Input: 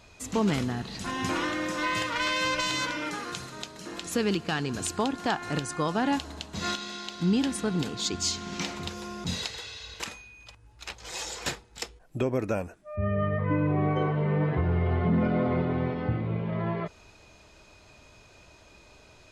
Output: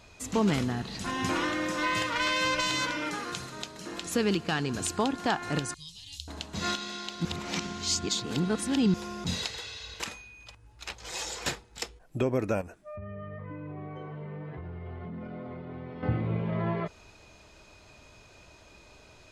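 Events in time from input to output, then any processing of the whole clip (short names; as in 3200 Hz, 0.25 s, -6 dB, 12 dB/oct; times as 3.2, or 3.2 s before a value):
5.74–6.28 elliptic band-stop 100–3500 Hz
7.25–8.94 reverse
12.61–16.03 compressor, threshold -38 dBFS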